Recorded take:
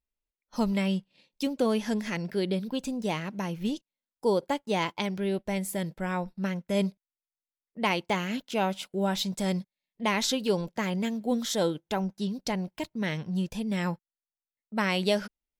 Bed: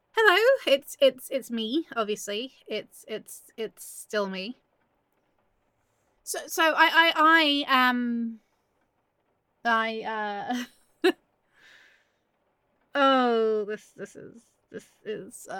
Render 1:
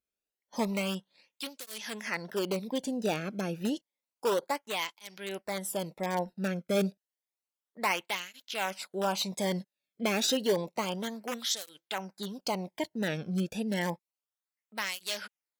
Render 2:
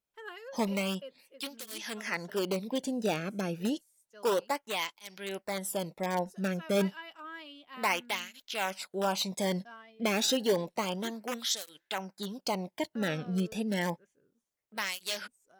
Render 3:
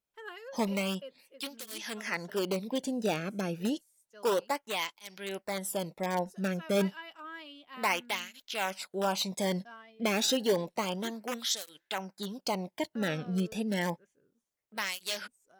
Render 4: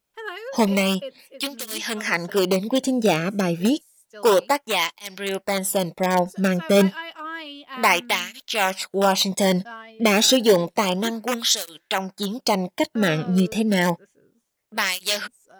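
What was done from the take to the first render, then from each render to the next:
in parallel at -7.5 dB: integer overflow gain 20.5 dB; on the sum: cancelling through-zero flanger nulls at 0.3 Hz, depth 1.1 ms
add bed -26 dB
no audible change
trim +11.5 dB

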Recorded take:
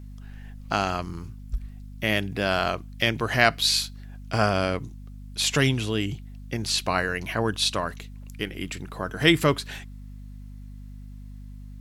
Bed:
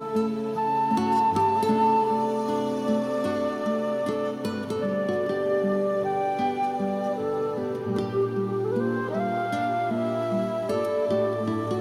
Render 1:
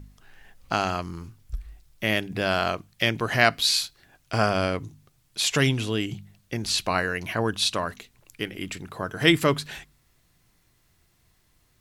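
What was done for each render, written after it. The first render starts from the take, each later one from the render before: de-hum 50 Hz, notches 5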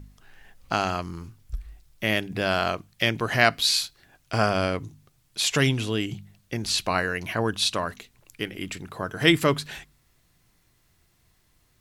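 no audible change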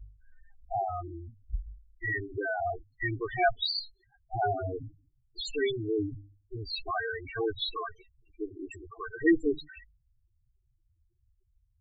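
comb filter that takes the minimum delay 2.6 ms; loudest bins only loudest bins 4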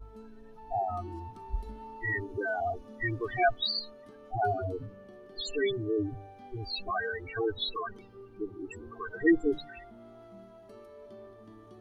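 add bed -25 dB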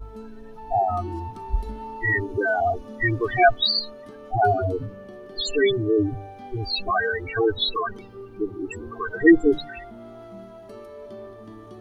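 trim +9.5 dB

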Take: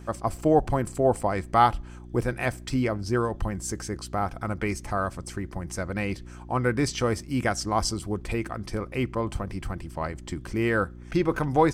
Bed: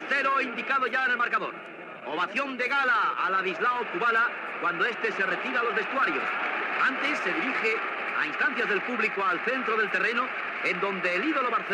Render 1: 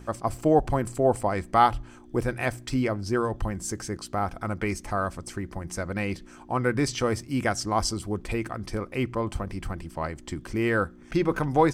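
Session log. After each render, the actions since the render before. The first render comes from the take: de-hum 60 Hz, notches 3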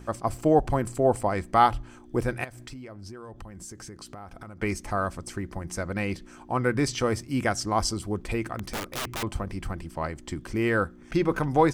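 2.44–4.62 s: compression 10:1, threshold -38 dBFS; 8.57–9.23 s: integer overflow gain 26 dB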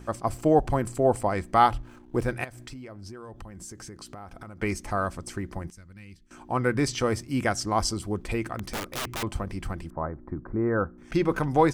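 1.78–2.31 s: hysteresis with a dead band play -49.5 dBFS; 5.70–6.31 s: amplifier tone stack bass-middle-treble 6-0-2; 9.90–10.98 s: inverse Chebyshev low-pass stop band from 2.8 kHz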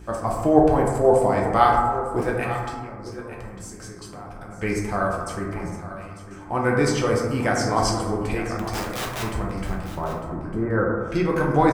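delay 901 ms -13.5 dB; plate-style reverb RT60 1.5 s, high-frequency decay 0.3×, DRR -2.5 dB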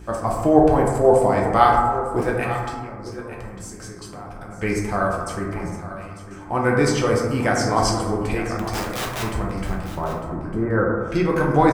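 trim +2 dB; peak limiter -2 dBFS, peak gain reduction 1 dB

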